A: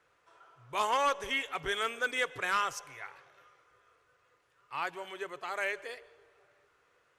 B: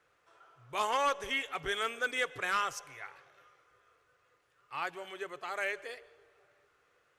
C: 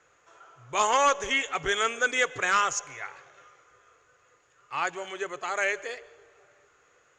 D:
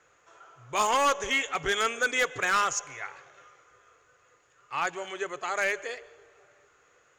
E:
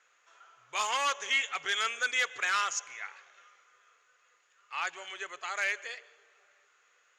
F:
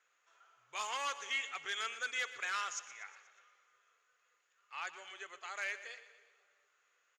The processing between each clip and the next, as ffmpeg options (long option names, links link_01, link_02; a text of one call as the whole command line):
ffmpeg -i in.wav -af "bandreject=frequency=970:width=16,volume=-1dB" out.wav
ffmpeg -i in.wav -af "lowpass=frequency=6800:width_type=q:width=14,bass=frequency=250:gain=-1,treble=frequency=4000:gain=-10,volume=7.5dB" out.wav
ffmpeg -i in.wav -af "volume=19dB,asoftclip=hard,volume=-19dB" out.wav
ffmpeg -i in.wav -af "bandpass=frequency=3300:width_type=q:width=0.64:csg=0" out.wav
ffmpeg -i in.wav -af "aecho=1:1:120|240|360|480|600:0.178|0.0996|0.0558|0.0312|0.0175,volume=-8.5dB" out.wav